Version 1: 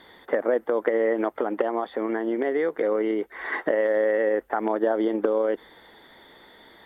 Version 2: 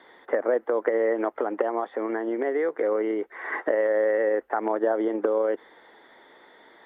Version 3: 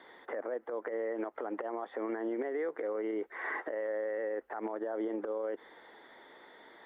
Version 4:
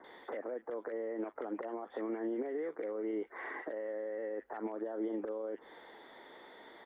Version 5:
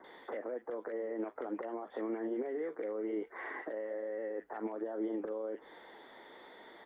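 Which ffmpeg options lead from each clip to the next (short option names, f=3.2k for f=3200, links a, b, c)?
-filter_complex "[0:a]acrossover=split=3100[a][b];[b]acompressor=threshold=-55dB:ratio=4:attack=1:release=60[c];[a][c]amix=inputs=2:normalize=0,acrossover=split=250 2900:gain=0.158 1 0.178[d][e][f];[d][e][f]amix=inputs=3:normalize=0"
-af "acompressor=threshold=-26dB:ratio=6,alimiter=level_in=1dB:limit=-24dB:level=0:latency=1:release=73,volume=-1dB,volume=-2.5dB"
-filter_complex "[0:a]acrossover=split=310[a][b];[b]acompressor=threshold=-41dB:ratio=6[c];[a][c]amix=inputs=2:normalize=0,acrossover=split=1600[d][e];[e]adelay=40[f];[d][f]amix=inputs=2:normalize=0,volume=2dB"
-af "flanger=delay=5.2:depth=4:regen=-74:speed=1.2:shape=sinusoidal,volume=4.5dB"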